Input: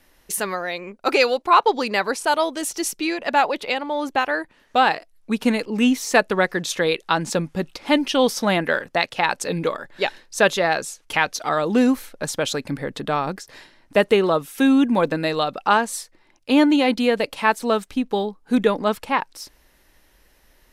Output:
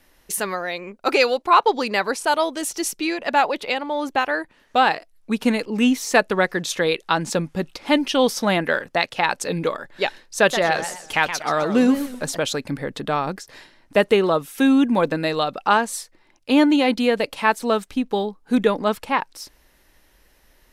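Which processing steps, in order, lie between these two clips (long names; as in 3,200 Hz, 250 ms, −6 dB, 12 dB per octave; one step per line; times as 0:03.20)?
0:10.37–0:12.39: feedback echo with a swinging delay time 125 ms, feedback 33%, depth 218 cents, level −10 dB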